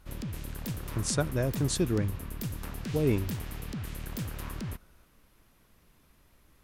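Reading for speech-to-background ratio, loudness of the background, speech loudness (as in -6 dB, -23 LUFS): 8.0 dB, -38.5 LUFS, -30.5 LUFS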